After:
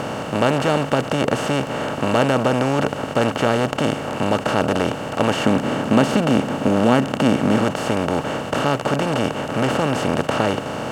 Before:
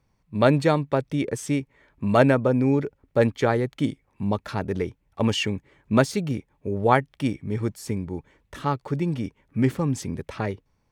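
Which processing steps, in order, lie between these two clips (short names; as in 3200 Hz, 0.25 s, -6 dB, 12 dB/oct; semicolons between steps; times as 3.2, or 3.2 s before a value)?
per-bin compression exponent 0.2; 5.46–7.64 bell 230 Hz +8 dB 0.85 oct; gain -5.5 dB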